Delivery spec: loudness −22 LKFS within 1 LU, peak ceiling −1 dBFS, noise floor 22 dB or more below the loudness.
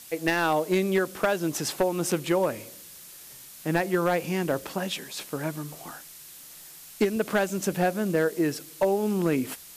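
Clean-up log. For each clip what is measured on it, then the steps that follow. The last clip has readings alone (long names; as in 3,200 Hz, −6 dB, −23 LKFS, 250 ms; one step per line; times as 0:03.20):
share of clipped samples 0.4%; peaks flattened at −15.0 dBFS; background noise floor −47 dBFS; target noise floor −49 dBFS; integrated loudness −27.0 LKFS; sample peak −15.0 dBFS; target loudness −22.0 LKFS
→ clipped peaks rebuilt −15 dBFS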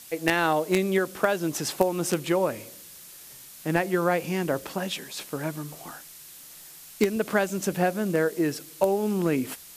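share of clipped samples 0.0%; background noise floor −47 dBFS; target noise floor −49 dBFS
→ broadband denoise 6 dB, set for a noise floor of −47 dBFS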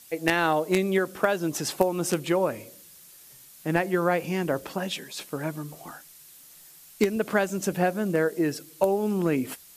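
background noise floor −51 dBFS; integrated loudness −26.5 LKFS; sample peak −6.0 dBFS; target loudness −22.0 LKFS
→ level +4.5 dB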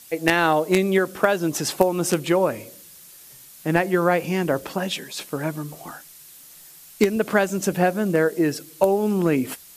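integrated loudness −22.0 LKFS; sample peak −1.5 dBFS; background noise floor −46 dBFS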